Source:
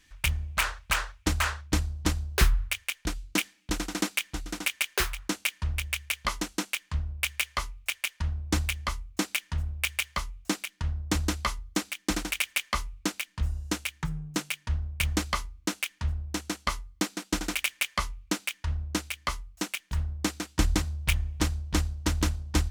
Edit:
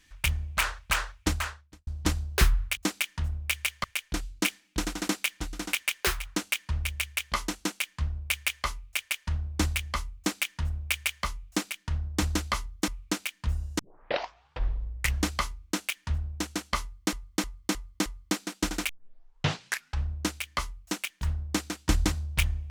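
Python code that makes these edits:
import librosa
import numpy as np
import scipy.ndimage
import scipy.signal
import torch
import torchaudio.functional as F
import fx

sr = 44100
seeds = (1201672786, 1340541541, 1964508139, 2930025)

y = fx.edit(x, sr, fx.fade_out_span(start_s=1.28, length_s=0.59, curve='qua'),
    fx.duplicate(start_s=9.11, length_s=1.07, to_s=2.77),
    fx.cut(start_s=11.81, length_s=1.01),
    fx.tape_start(start_s=13.73, length_s=1.48),
    fx.repeat(start_s=16.76, length_s=0.31, count=5),
    fx.tape_start(start_s=17.59, length_s=1.19), tone=tone)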